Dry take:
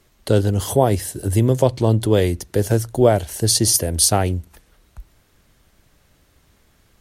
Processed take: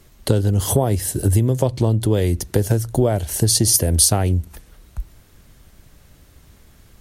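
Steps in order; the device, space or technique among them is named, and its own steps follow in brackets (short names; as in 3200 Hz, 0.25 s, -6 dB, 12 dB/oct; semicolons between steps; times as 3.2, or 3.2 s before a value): ASMR close-microphone chain (low shelf 250 Hz +7 dB; compressor 6:1, threshold -17 dBFS, peak gain reduction 11 dB; high shelf 6900 Hz +5 dB); gain +3.5 dB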